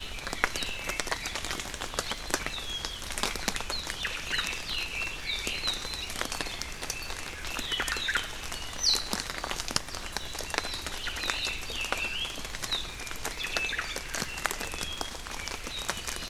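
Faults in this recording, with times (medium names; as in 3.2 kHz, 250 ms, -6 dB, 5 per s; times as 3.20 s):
crackle 81 per s -40 dBFS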